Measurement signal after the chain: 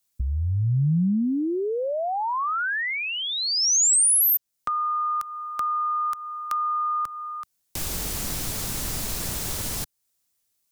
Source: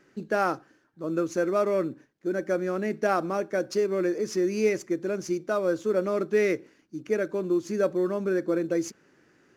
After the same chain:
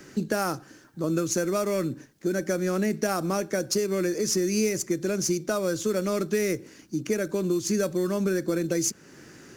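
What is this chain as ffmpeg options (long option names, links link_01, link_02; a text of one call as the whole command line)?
ffmpeg -i in.wav -filter_complex "[0:a]acrossover=split=140|1700|6700[link_01][link_02][link_03][link_04];[link_01]acompressor=threshold=-39dB:ratio=4[link_05];[link_02]acompressor=threshold=-32dB:ratio=4[link_06];[link_03]acompressor=threshold=-45dB:ratio=4[link_07];[link_04]acompressor=threshold=-36dB:ratio=4[link_08];[link_05][link_06][link_07][link_08]amix=inputs=4:normalize=0,bass=frequency=250:gain=6,treble=frequency=4000:gain=11,asplit=2[link_09][link_10];[link_10]acompressor=threshold=-46dB:ratio=6,volume=2dB[link_11];[link_09][link_11]amix=inputs=2:normalize=0,volume=4dB" out.wav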